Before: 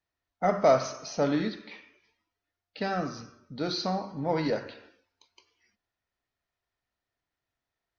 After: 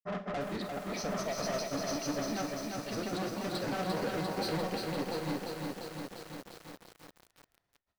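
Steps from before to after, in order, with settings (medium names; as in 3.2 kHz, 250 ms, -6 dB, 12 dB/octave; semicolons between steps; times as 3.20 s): treble shelf 2.2 kHz -5 dB; in parallel at -2 dB: level held to a coarse grid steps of 15 dB; on the sum: peak limiter -21.5 dBFS, peak gain reduction 11.5 dB; granulator, spray 949 ms, pitch spread up and down by 0 st; saturation -36.5 dBFS, distortion -7 dB; on a send at -9.5 dB: reverberation RT60 0.35 s, pre-delay 30 ms; on the sum: bit-crushed delay 347 ms, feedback 80%, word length 9-bit, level -3 dB; trim +3.5 dB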